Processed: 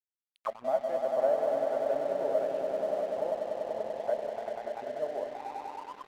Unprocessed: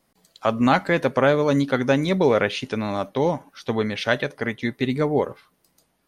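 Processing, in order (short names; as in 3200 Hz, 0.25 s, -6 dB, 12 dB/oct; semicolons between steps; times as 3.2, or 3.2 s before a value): swelling echo 97 ms, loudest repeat 5, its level -6.5 dB; auto-wah 640–3000 Hz, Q 12, down, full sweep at -16.5 dBFS; crossover distortion -50 dBFS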